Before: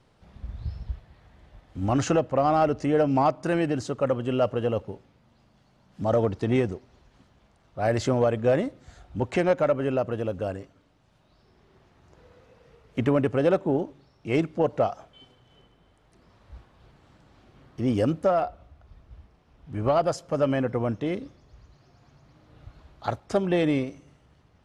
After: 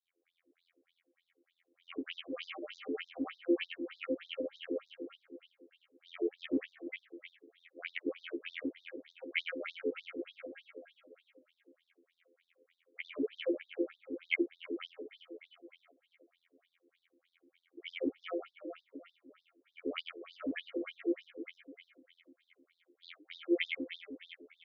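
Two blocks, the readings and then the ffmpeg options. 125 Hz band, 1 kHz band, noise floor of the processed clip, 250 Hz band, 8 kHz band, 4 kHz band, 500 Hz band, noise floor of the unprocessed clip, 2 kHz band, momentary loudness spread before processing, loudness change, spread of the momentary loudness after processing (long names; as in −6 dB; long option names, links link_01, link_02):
below −40 dB, −27.0 dB, −84 dBFS, −11.5 dB, can't be measured, −3.0 dB, −15.5 dB, −62 dBFS, −4.5 dB, 15 LU, −14.0 dB, 20 LU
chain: -filter_complex "[0:a]bandreject=frequency=600:width=12,adynamicequalizer=threshold=0.00501:dfrequency=2800:dqfactor=0.72:tfrequency=2800:tqfactor=0.72:attack=5:release=100:ratio=0.375:range=3:mode=boostabove:tftype=bell,dynaudnorm=framelen=430:gausssize=7:maxgain=6dB,afftfilt=real='hypot(re,im)*cos(PI*b)':imag='0':win_size=2048:overlap=0.75,adynamicsmooth=sensitivity=1:basefreq=4000,asplit=3[link_01][link_02][link_03];[link_01]bandpass=frequency=270:width_type=q:width=8,volume=0dB[link_04];[link_02]bandpass=frequency=2290:width_type=q:width=8,volume=-6dB[link_05];[link_03]bandpass=frequency=3010:width_type=q:width=8,volume=-9dB[link_06];[link_04][link_05][link_06]amix=inputs=3:normalize=0,flanger=delay=3.3:depth=7.9:regen=90:speed=1.1:shape=triangular,asplit=2[link_07][link_08];[link_08]aecho=0:1:352|704|1056|1408|1760:0.355|0.17|0.0817|0.0392|0.0188[link_09];[link_07][link_09]amix=inputs=2:normalize=0,afftfilt=real='re*between(b*sr/1024,390*pow(5100/390,0.5+0.5*sin(2*PI*3.3*pts/sr))/1.41,390*pow(5100/390,0.5+0.5*sin(2*PI*3.3*pts/sr))*1.41)':imag='im*between(b*sr/1024,390*pow(5100/390,0.5+0.5*sin(2*PI*3.3*pts/sr))/1.41,390*pow(5100/390,0.5+0.5*sin(2*PI*3.3*pts/sr))*1.41)':win_size=1024:overlap=0.75,volume=14dB"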